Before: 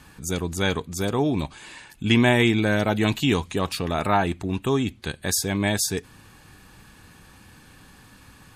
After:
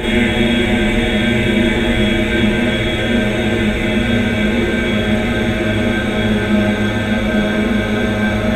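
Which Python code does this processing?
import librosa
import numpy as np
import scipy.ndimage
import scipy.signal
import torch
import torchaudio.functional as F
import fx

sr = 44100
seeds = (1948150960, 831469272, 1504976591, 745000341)

y = fx.octave_divider(x, sr, octaves=2, level_db=-2.0)
y = fx.paulstretch(y, sr, seeds[0], factor=32.0, window_s=1.0, from_s=2.49)
y = fx.rev_schroeder(y, sr, rt60_s=0.45, comb_ms=30, drr_db=-6.5)
y = F.gain(torch.from_numpy(y), -3.0).numpy()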